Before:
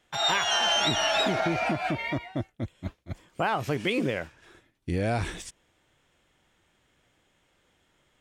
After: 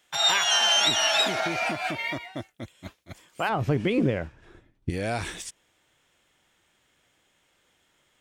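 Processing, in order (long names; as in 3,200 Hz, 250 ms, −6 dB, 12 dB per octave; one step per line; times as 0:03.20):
spectral tilt +2.5 dB per octave, from 0:03.48 −2.5 dB per octave, from 0:04.89 +1.5 dB per octave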